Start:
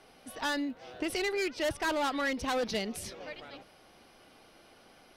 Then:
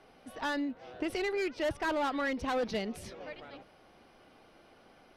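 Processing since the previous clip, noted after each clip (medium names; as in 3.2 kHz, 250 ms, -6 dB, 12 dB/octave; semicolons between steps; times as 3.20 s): treble shelf 3.6 kHz -11 dB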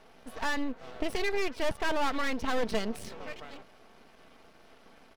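half-wave rectifier; comb 4.5 ms, depth 32%; trim +6 dB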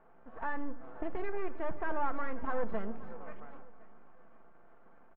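four-pole ladder low-pass 1.7 kHz, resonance 30%; feedback delay 530 ms, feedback 38%, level -19 dB; simulated room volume 3800 m³, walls furnished, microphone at 0.84 m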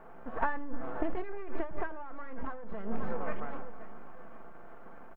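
compressor with a negative ratio -33 dBFS, ratio -0.5; trim +6 dB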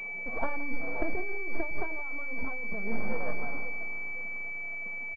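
coarse spectral quantiser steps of 15 dB; delay 170 ms -17.5 dB; class-D stage that switches slowly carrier 2.3 kHz; trim +1.5 dB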